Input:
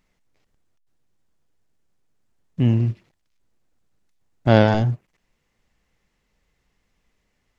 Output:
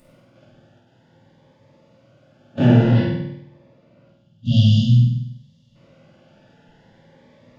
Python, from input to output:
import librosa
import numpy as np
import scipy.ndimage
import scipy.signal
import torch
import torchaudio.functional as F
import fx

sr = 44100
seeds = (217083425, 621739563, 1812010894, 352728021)

p1 = fx.bin_compress(x, sr, power=0.4)
p2 = scipy.signal.sosfilt(scipy.signal.butter(2, 92.0, 'highpass', fs=sr, output='sos'), p1)
p3 = fx.spec_box(p2, sr, start_s=4.08, length_s=1.67, low_hz=240.0, high_hz=2700.0, gain_db=-22)
p4 = fx.noise_reduce_blind(p3, sr, reduce_db=27)
p5 = fx.high_shelf(p4, sr, hz=4800.0, db=-11.5, at=(2.64, 4.52))
p6 = fx.over_compress(p5, sr, threshold_db=-27.0, ratio=-1.0)
p7 = p5 + (p6 * 10.0 ** (-3.0 / 20.0))
p8 = fx.room_flutter(p7, sr, wall_m=8.4, rt60_s=0.81)
p9 = fx.room_shoebox(p8, sr, seeds[0], volume_m3=150.0, walls='furnished', distance_m=2.5)
p10 = fx.notch_cascade(p9, sr, direction='rising', hz=0.52)
y = p10 * 10.0 ** (-5.0 / 20.0)